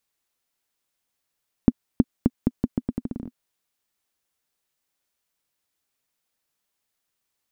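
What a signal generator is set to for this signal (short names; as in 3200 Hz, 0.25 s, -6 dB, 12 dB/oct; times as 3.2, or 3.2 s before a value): bouncing ball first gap 0.32 s, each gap 0.81, 245 Hz, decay 40 ms -2 dBFS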